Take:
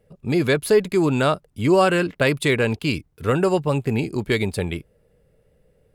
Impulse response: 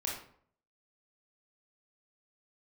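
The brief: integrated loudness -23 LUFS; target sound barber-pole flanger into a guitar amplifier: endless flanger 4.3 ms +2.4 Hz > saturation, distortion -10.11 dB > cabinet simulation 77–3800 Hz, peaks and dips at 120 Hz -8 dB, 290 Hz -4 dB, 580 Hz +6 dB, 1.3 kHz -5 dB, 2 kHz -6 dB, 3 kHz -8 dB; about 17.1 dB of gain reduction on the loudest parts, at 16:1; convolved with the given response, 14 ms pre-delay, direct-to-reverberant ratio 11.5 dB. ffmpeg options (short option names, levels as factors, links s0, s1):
-filter_complex "[0:a]acompressor=threshold=0.0355:ratio=16,asplit=2[s0][s1];[1:a]atrim=start_sample=2205,adelay=14[s2];[s1][s2]afir=irnorm=-1:irlink=0,volume=0.188[s3];[s0][s3]amix=inputs=2:normalize=0,asplit=2[s4][s5];[s5]adelay=4.3,afreqshift=2.4[s6];[s4][s6]amix=inputs=2:normalize=1,asoftclip=threshold=0.0188,highpass=77,equalizer=f=120:t=q:w=4:g=-8,equalizer=f=290:t=q:w=4:g=-4,equalizer=f=580:t=q:w=4:g=6,equalizer=f=1300:t=q:w=4:g=-5,equalizer=f=2000:t=q:w=4:g=-6,equalizer=f=3000:t=q:w=4:g=-8,lowpass=f=3800:w=0.5412,lowpass=f=3800:w=1.3066,volume=8.91"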